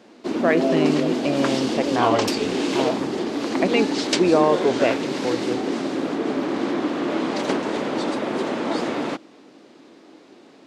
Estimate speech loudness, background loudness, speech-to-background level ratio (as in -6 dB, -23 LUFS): -23.5 LUFS, -24.0 LUFS, 0.5 dB